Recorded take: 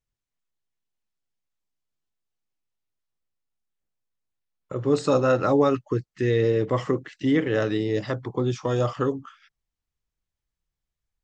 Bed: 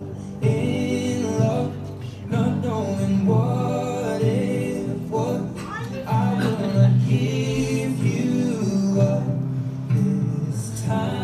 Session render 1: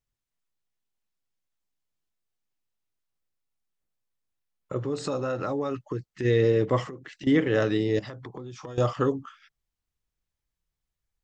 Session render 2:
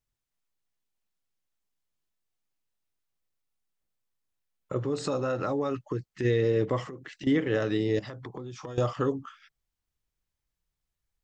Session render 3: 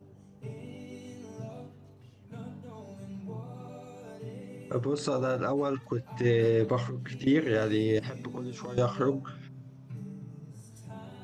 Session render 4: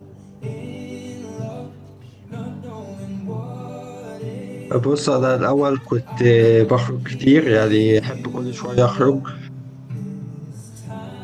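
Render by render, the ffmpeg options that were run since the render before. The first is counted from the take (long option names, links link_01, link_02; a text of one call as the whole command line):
ffmpeg -i in.wav -filter_complex "[0:a]asplit=3[link_01][link_02][link_03];[link_01]afade=type=out:start_time=4.78:duration=0.02[link_04];[link_02]acompressor=threshold=-28dB:ratio=3:attack=3.2:release=140:knee=1:detection=peak,afade=type=in:start_time=4.78:duration=0.02,afade=type=out:start_time=6.24:duration=0.02[link_05];[link_03]afade=type=in:start_time=6.24:duration=0.02[link_06];[link_04][link_05][link_06]amix=inputs=3:normalize=0,asettb=1/sr,asplit=3[link_07][link_08][link_09];[link_07]atrim=end=6.844[link_10];[link_08]atrim=start=6.84:end=7.27,asetpts=PTS-STARTPTS,afade=type=in:duration=0.004:curve=qsin,afade=type=out:start_time=0.426:duration=0.004:curve=qsin,acompressor=threshold=-36dB:ratio=10:attack=3.2:release=140:knee=1:detection=peak[link_11];[link_09]atrim=start=7.266[link_12];[link_10][link_11]acrossfade=duration=0.004:curve1=hsin:curve2=qsin[link_13];[link_13][link_12]acrossfade=duration=0.004:curve1=qsin:curve2=hsin,asettb=1/sr,asplit=3[link_14][link_15][link_16];[link_14]atrim=end=7.994[link_17];[link_15]atrim=start=7.99:end=8.78,asetpts=PTS-STARTPTS,afade=type=in:duration=0.004:curve=qsin,afade=type=out:start_time=0.786:duration=0.004:curve=qsin,acompressor=threshold=-35dB:ratio=20:attack=3.2:release=140:knee=1:detection=peak[link_18];[link_16]atrim=start=8.776[link_19];[link_17][link_18]acrossfade=duration=0.004:curve1=hsin:curve2=qsin[link_20];[link_20][link_19]acrossfade=duration=0.004:curve1=qsin:curve2=hsin" out.wav
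ffmpeg -i in.wav -af "alimiter=limit=-16.5dB:level=0:latency=1:release=265" out.wav
ffmpeg -i in.wav -i bed.wav -filter_complex "[1:a]volume=-21.5dB[link_01];[0:a][link_01]amix=inputs=2:normalize=0" out.wav
ffmpeg -i in.wav -af "volume=12dB" out.wav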